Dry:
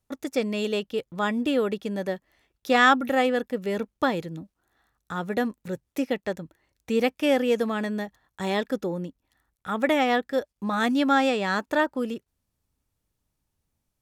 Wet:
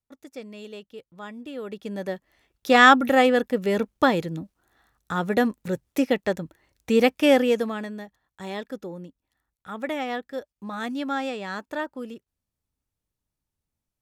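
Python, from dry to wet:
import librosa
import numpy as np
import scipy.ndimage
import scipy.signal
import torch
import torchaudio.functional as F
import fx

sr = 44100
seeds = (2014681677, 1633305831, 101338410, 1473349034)

y = fx.gain(x, sr, db=fx.line((1.52, -13.0), (1.87, -3.0), (2.83, 4.5), (7.35, 4.5), (7.97, -7.0)))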